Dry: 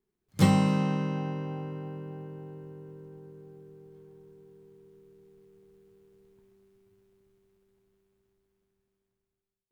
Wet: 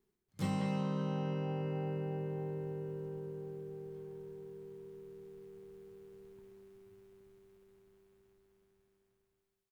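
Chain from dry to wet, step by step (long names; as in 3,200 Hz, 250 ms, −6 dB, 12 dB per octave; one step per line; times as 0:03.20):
far-end echo of a speakerphone 190 ms, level −6 dB
reversed playback
downward compressor 5 to 1, threshold −37 dBFS, peak gain reduction 19 dB
reversed playback
level +3 dB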